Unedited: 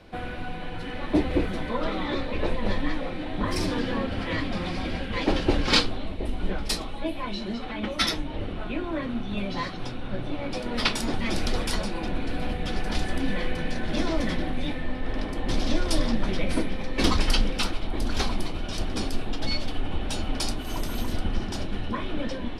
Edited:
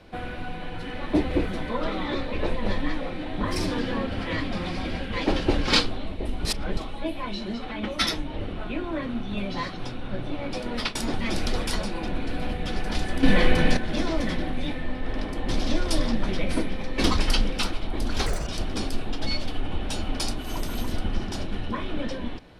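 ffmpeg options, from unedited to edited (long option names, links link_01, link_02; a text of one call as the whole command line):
ffmpeg -i in.wav -filter_complex "[0:a]asplit=8[link_01][link_02][link_03][link_04][link_05][link_06][link_07][link_08];[link_01]atrim=end=6.452[link_09];[link_02]atrim=start=6.448:end=6.772,asetpts=PTS-STARTPTS,areverse[link_10];[link_03]atrim=start=6.768:end=10.95,asetpts=PTS-STARTPTS,afade=type=out:start_time=3.892:duration=0.29:curve=qsin:silence=0.223872[link_11];[link_04]atrim=start=10.95:end=13.232,asetpts=PTS-STARTPTS,afade=type=in:duration=0.004:curve=hsin:silence=0.223872[link_12];[link_05]atrim=start=13.228:end=13.772,asetpts=PTS-STARTPTS,volume=9dB[link_13];[link_06]atrim=start=13.768:end=18.264[link_14];[link_07]atrim=start=18.26:end=18.67,asetpts=PTS-STARTPTS,asetrate=86877,aresample=44100,atrim=end_sample=9178,asetpts=PTS-STARTPTS[link_15];[link_08]atrim=start=18.666[link_16];[link_09][link_10]acrossfade=duration=0.004:curve1=hsin:curve2=hsin[link_17];[link_11][link_12]concat=n=2:v=0:a=1[link_18];[link_17][link_18]acrossfade=duration=0.004:curve1=hsin:curve2=hsin[link_19];[link_19][link_13]acrossfade=duration=0.004:curve1=hsin:curve2=hsin[link_20];[link_20][link_14]acrossfade=duration=0.004:curve1=hsin:curve2=hsin[link_21];[link_21][link_15]acrossfade=duration=0.004:curve1=hsin:curve2=hsin[link_22];[link_22][link_16]acrossfade=duration=0.004:curve1=hsin:curve2=hsin" out.wav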